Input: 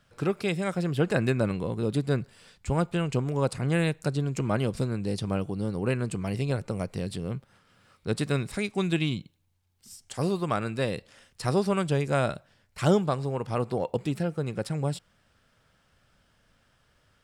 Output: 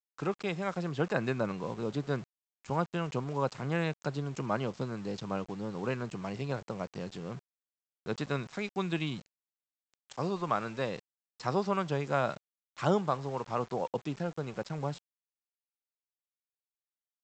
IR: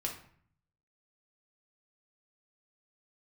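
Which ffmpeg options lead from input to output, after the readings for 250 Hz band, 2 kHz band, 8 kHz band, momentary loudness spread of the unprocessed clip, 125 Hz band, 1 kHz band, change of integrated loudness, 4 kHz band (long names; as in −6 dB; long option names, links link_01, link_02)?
−7.0 dB, −4.0 dB, −10.0 dB, 8 LU, −8.5 dB, −0.5 dB, −5.5 dB, −6.0 dB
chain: -af "highpass=frequency=120:width=0.5412,highpass=frequency=120:width=1.3066,equalizer=frequency=1000:width_type=o:width=1.2:gain=8,aresample=16000,aeval=exprs='val(0)*gte(abs(val(0)),0.0106)':channel_layout=same,aresample=44100,volume=-7dB"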